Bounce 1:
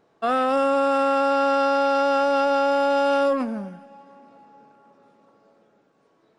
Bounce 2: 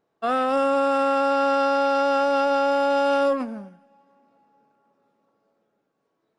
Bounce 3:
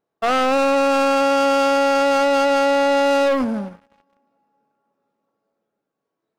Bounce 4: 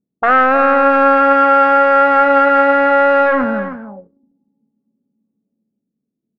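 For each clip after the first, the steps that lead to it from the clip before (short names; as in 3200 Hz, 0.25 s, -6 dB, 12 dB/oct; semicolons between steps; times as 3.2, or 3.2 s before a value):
upward expander 1.5:1, over -42 dBFS
sample leveller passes 3
echo 0.313 s -11 dB; envelope low-pass 220–1600 Hz up, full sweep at -25.5 dBFS; gain +2 dB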